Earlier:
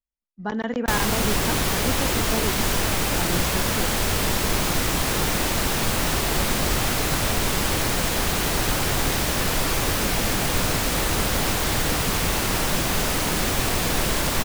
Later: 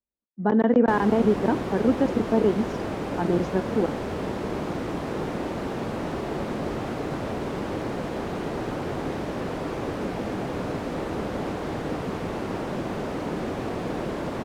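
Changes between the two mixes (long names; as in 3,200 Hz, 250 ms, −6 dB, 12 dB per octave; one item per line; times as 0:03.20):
speech +9.5 dB
master: add resonant band-pass 350 Hz, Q 0.78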